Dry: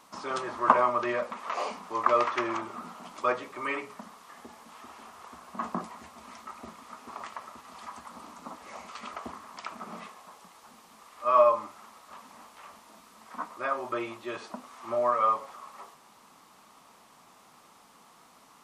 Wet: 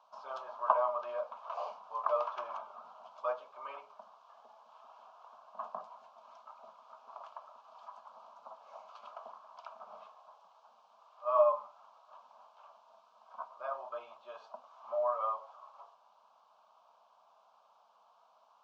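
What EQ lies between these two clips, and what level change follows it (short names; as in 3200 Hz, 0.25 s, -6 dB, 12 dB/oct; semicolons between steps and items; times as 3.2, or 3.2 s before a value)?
air absorption 170 m; speaker cabinet 470–7100 Hz, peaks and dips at 640 Hz +8 dB, 990 Hz +4 dB, 1600 Hz +6 dB, 3000 Hz +3 dB; fixed phaser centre 790 Hz, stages 4; -8.5 dB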